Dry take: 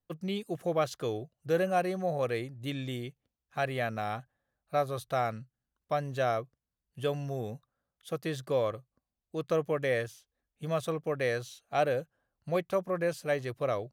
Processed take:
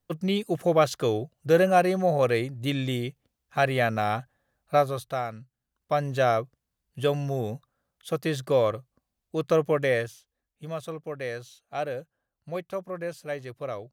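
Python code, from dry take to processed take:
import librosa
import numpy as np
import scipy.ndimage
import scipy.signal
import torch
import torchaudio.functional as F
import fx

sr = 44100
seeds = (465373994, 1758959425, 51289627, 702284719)

y = fx.gain(x, sr, db=fx.line((4.75, 8.0), (5.29, -2.0), (6.05, 6.5), (9.76, 6.5), (10.76, -3.0)))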